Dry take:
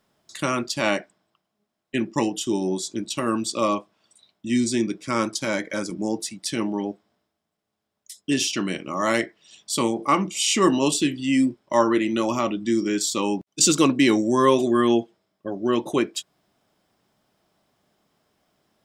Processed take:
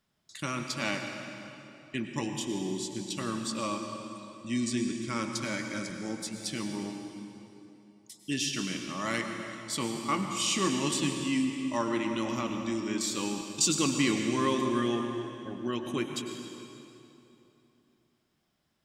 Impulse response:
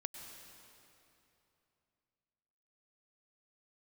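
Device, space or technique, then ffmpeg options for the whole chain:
swimming-pool hall: -filter_complex "[0:a]equalizer=frequency=560:width_type=o:width=2.7:gain=-10.5[link_01];[1:a]atrim=start_sample=2205[link_02];[link_01][link_02]afir=irnorm=-1:irlink=0,highshelf=frequency=4300:gain=-5.5"

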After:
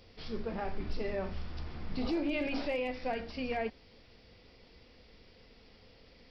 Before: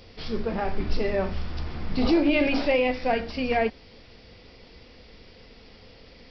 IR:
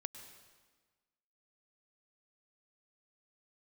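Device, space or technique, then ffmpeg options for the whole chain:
clipper into limiter: -af "asoftclip=type=hard:threshold=-13.5dB,alimiter=limit=-16.5dB:level=0:latency=1:release=72,volume=-9dB"

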